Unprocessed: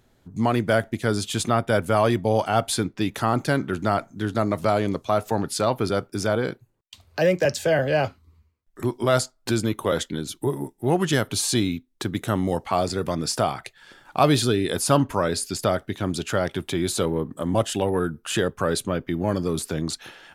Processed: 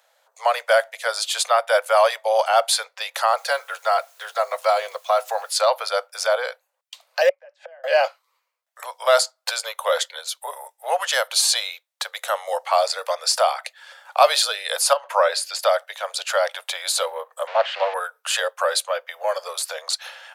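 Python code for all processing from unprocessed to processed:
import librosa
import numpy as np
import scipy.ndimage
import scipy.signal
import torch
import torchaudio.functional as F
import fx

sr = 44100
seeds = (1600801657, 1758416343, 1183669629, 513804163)

y = fx.chain(x, sr, fx.notch_comb(f0_hz=300.0),
    fx.quant_dither(seeds[0], bits=10, dither='triangular'), at=(3.37, 5.55))
y = fx.chain(y, sr, fx.bandpass_edges(low_hz=120.0, high_hz=2100.0),
    fx.gate_flip(shuts_db=-23.0, range_db=-29), at=(7.29, 7.84))
y = fx.chain(y, sr, fx.bass_treble(bass_db=9, treble_db=-7),
    fx.over_compress(threshold_db=-17.0, ratio=-0.5), at=(14.93, 15.63))
y = fx.chain(y, sr, fx.crossing_spikes(level_db=-14.0),
    fx.lowpass(hz=2700.0, slope=24),
    fx.doppler_dist(depth_ms=0.36), at=(17.47, 17.94))
y = scipy.signal.sosfilt(scipy.signal.butter(16, 510.0, 'highpass', fs=sr, output='sos'), y)
y = fx.dynamic_eq(y, sr, hz=4400.0, q=4.2, threshold_db=-48.0, ratio=4.0, max_db=5)
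y = y * 10.0 ** (5.0 / 20.0)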